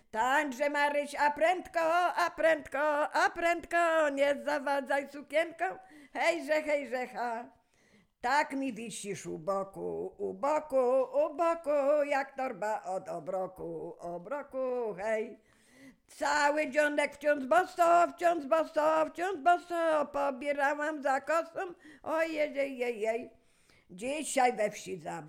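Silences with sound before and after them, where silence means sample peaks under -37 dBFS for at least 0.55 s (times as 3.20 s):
7.42–8.24 s
15.28–16.21 s
23.24–23.99 s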